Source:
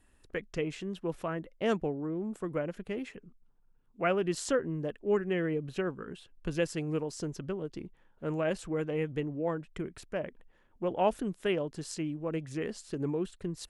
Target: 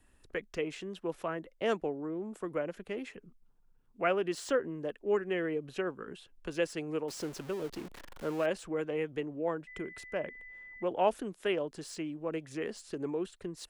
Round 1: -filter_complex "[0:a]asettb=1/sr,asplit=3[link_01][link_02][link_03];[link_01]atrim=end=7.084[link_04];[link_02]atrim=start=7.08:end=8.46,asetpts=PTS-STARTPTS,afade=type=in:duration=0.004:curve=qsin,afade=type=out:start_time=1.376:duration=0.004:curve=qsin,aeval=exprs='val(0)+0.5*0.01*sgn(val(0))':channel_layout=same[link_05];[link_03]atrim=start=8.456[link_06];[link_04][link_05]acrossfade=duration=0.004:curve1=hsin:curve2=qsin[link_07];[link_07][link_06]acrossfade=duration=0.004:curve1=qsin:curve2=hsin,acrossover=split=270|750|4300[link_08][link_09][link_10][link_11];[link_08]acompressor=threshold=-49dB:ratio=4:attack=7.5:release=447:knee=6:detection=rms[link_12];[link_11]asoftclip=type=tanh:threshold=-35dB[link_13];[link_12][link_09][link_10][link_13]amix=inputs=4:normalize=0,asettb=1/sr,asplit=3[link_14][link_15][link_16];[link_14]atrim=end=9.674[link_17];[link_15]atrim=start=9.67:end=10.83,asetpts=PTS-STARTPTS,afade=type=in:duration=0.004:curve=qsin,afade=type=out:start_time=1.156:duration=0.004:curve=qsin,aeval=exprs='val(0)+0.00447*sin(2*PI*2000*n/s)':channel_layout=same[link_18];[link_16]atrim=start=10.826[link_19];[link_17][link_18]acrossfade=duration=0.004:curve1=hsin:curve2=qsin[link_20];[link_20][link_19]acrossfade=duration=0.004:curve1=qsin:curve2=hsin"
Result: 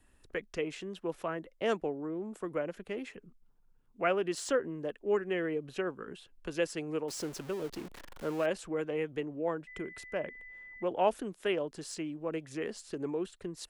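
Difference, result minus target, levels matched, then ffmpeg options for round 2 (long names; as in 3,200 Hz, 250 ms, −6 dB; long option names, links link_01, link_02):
soft clipping: distortion −9 dB
-filter_complex "[0:a]asettb=1/sr,asplit=3[link_01][link_02][link_03];[link_01]atrim=end=7.084[link_04];[link_02]atrim=start=7.08:end=8.46,asetpts=PTS-STARTPTS,afade=type=in:duration=0.004:curve=qsin,afade=type=out:start_time=1.376:duration=0.004:curve=qsin,aeval=exprs='val(0)+0.5*0.01*sgn(val(0))':channel_layout=same[link_05];[link_03]atrim=start=8.456[link_06];[link_04][link_05]acrossfade=duration=0.004:curve1=hsin:curve2=qsin[link_07];[link_07][link_06]acrossfade=duration=0.004:curve1=qsin:curve2=hsin,acrossover=split=270|750|4300[link_08][link_09][link_10][link_11];[link_08]acompressor=threshold=-49dB:ratio=4:attack=7.5:release=447:knee=6:detection=rms[link_12];[link_11]asoftclip=type=tanh:threshold=-44.5dB[link_13];[link_12][link_09][link_10][link_13]amix=inputs=4:normalize=0,asettb=1/sr,asplit=3[link_14][link_15][link_16];[link_14]atrim=end=9.674[link_17];[link_15]atrim=start=9.67:end=10.83,asetpts=PTS-STARTPTS,afade=type=in:duration=0.004:curve=qsin,afade=type=out:start_time=1.156:duration=0.004:curve=qsin,aeval=exprs='val(0)+0.00447*sin(2*PI*2000*n/s)':channel_layout=same[link_18];[link_16]atrim=start=10.826[link_19];[link_17][link_18]acrossfade=duration=0.004:curve1=hsin:curve2=qsin[link_20];[link_20][link_19]acrossfade=duration=0.004:curve1=qsin:curve2=hsin"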